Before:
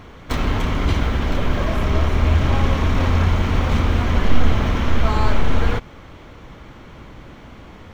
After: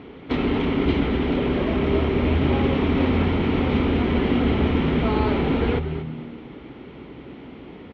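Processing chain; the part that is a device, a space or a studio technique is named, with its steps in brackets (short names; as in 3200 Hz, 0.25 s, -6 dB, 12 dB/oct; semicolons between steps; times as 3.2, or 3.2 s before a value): frequency-shifting delay pedal into a guitar cabinet (frequency-shifting echo 0.232 s, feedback 33%, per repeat -79 Hz, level -11 dB; speaker cabinet 85–3400 Hz, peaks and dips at 97 Hz -9 dB, 270 Hz +7 dB, 400 Hz +8 dB, 620 Hz -4 dB, 1100 Hz -7 dB, 1600 Hz -7 dB)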